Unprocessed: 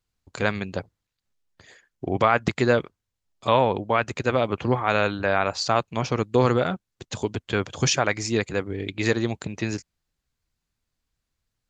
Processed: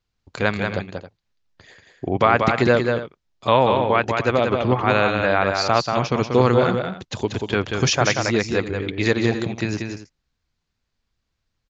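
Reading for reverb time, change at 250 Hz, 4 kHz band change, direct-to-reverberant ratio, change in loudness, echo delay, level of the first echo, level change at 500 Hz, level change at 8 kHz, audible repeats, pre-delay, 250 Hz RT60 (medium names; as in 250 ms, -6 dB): no reverb, +4.5 dB, +4.0 dB, no reverb, +4.0 dB, 186 ms, -5.0 dB, +4.5 dB, +1.0 dB, 2, no reverb, no reverb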